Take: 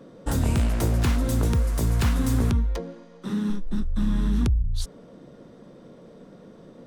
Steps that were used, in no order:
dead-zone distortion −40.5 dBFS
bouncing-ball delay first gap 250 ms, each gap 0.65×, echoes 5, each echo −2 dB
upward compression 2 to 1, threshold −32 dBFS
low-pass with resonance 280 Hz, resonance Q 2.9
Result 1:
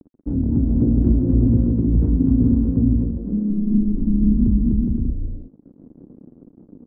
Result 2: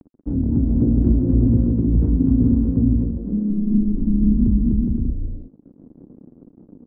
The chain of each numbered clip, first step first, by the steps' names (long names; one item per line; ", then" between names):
bouncing-ball delay, then dead-zone distortion, then upward compression, then low-pass with resonance
bouncing-ball delay, then dead-zone distortion, then low-pass with resonance, then upward compression